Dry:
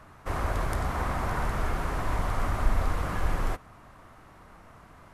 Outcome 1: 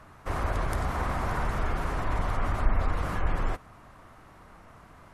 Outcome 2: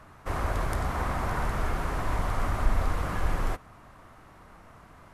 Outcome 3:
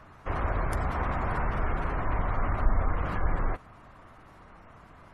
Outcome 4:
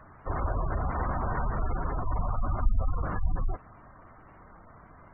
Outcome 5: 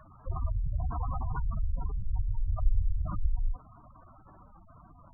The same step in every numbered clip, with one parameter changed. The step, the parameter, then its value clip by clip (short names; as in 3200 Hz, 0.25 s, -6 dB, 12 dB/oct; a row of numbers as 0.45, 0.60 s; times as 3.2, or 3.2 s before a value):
spectral gate, under each frame's peak: -45, -60, -35, -20, -10 dB